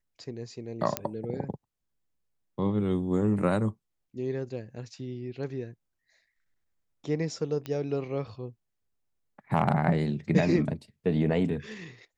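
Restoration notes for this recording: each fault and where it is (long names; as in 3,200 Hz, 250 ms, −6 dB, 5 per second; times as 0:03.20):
0:00.97: click −10 dBFS
0:07.66: click −21 dBFS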